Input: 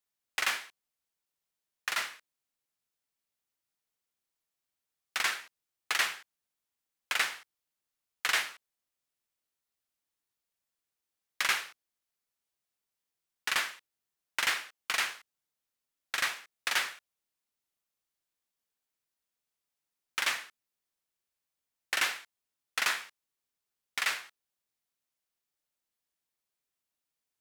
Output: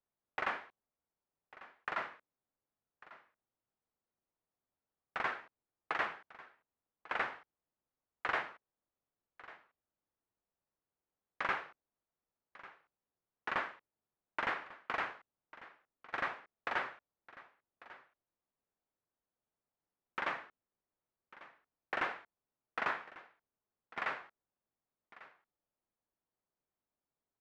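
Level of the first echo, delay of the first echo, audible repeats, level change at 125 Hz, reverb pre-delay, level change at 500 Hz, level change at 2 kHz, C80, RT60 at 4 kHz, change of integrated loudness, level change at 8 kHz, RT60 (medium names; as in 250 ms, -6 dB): -18.5 dB, 1146 ms, 1, no reading, no reverb, +3.5 dB, -7.0 dB, no reverb, no reverb, -7.5 dB, under -30 dB, no reverb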